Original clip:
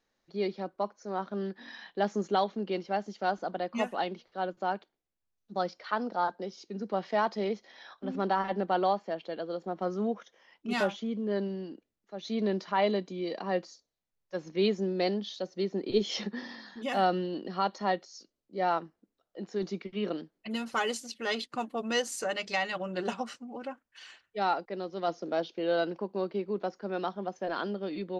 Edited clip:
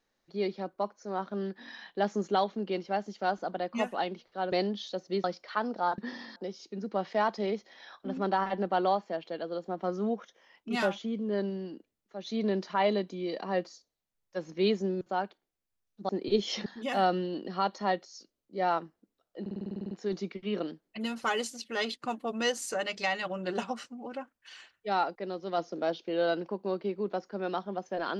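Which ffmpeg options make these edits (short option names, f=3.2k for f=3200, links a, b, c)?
-filter_complex "[0:a]asplit=18[a][b][c][d][e][f][g][h][i][j][k][l][m][n][o][p][q][r];[a]atrim=end=4.522[s];[b]atrim=start=14.988:end=15.712[t];[c]atrim=start=5.598:end=6.342[u];[d]atrim=start=16.278:end=16.662[v];[e]atrim=start=6.338:end=14.992[w];[f]atrim=start=4.518:end=5.602[x];[g]atrim=start=15.708:end=16.282[y];[h]atrim=start=16.658:end=19.462[z];[i]atrim=start=19.408:end=19.462[aa];[j]atrim=start=19.408:end=19.462[ab];[k]atrim=start=19.408:end=19.462[ac];[l]atrim=start=19.408:end=19.462[ad];[m]atrim=start=19.408:end=19.462[ae];[n]atrim=start=19.408:end=19.462[af];[o]atrim=start=19.408:end=19.462[ag];[p]atrim=start=19.408:end=19.462[ah];[q]atrim=start=19.408:end=19.462[ai];[r]atrim=start=19.408[aj];[s][t]acrossfade=d=0.004:c1=hsin:c2=hsin[ak];[ak][u]acrossfade=d=0.004:c1=hsin:c2=hsin[al];[al][v]acrossfade=d=0.004:c1=hsin:c2=hsin[am];[am][w]acrossfade=d=0.004:c1=hsin:c2=hsin[an];[an][x]acrossfade=d=0.004:c1=hsin:c2=hsin[ao];[ao][y]acrossfade=d=0.004:c1=hsin:c2=hsin[ap];[ap][z]acrossfade=d=0.004:c1=hsin:c2=hsin[aq];[aq][aa]acrossfade=d=0.004:c1=hsin:c2=hsin[ar];[ar][ab]acrossfade=d=0.004:c1=hsin:c2=hsin[as];[as][ac]acrossfade=d=0.004:c1=hsin:c2=hsin[at];[at][ad]acrossfade=d=0.004:c1=hsin:c2=hsin[au];[au][ae]acrossfade=d=0.004:c1=hsin:c2=hsin[av];[av][af]acrossfade=d=0.004:c1=hsin:c2=hsin[aw];[aw][ag]acrossfade=d=0.004:c1=hsin:c2=hsin[ax];[ax][ah]acrossfade=d=0.004:c1=hsin:c2=hsin[ay];[ay][ai]acrossfade=d=0.004:c1=hsin:c2=hsin[az];[az][aj]acrossfade=d=0.004:c1=hsin:c2=hsin"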